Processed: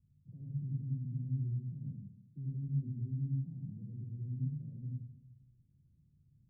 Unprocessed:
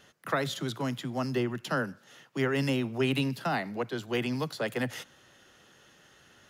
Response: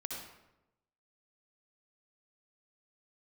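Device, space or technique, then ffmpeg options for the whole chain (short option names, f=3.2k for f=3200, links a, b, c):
club heard from the street: -filter_complex "[0:a]alimiter=limit=-24dB:level=0:latency=1,lowpass=f=140:w=0.5412,lowpass=f=140:w=1.3066[a];[1:a]atrim=start_sample=2205[b];[a][b]afir=irnorm=-1:irlink=0,volume=4.5dB"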